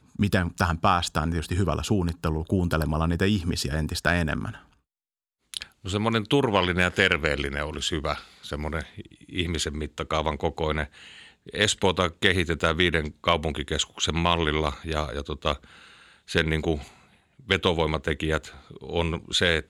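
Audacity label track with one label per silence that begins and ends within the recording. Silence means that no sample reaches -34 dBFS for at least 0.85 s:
4.560000	5.540000	silence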